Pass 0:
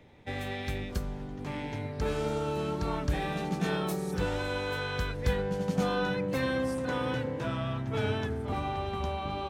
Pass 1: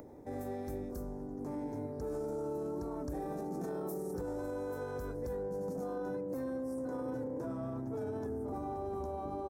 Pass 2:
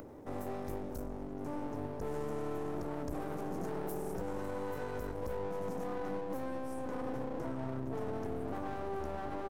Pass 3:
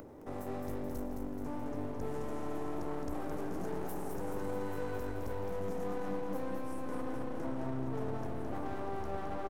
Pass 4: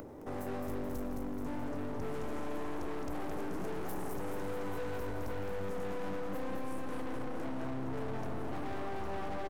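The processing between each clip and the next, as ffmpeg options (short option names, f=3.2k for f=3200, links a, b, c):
-af "firequalizer=gain_entry='entry(190,0);entry(270,11);entry(2900,-24);entry(5400,-1);entry(13000,10)':delay=0.05:min_phase=1,acompressor=mode=upward:threshold=-35dB:ratio=2.5,alimiter=limit=-23dB:level=0:latency=1:release=22,volume=-8.5dB"
-af "aeval=exprs='clip(val(0),-1,0.002)':c=same,volume=3.5dB"
-af "aecho=1:1:215|430|645|860|1075|1290|1505:0.531|0.297|0.166|0.0932|0.0522|0.0292|0.0164,volume=-1dB"
-af "asoftclip=type=hard:threshold=-34.5dB,volume=3dB"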